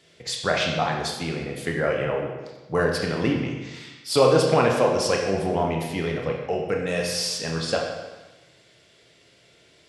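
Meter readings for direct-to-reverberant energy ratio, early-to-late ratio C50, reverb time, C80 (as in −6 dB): 0.0 dB, 3.5 dB, 1.2 s, 5.0 dB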